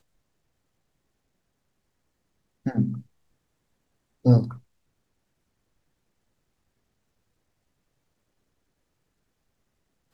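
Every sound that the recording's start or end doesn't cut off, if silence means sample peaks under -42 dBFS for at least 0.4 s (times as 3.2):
2.66–3.02
4.25–4.58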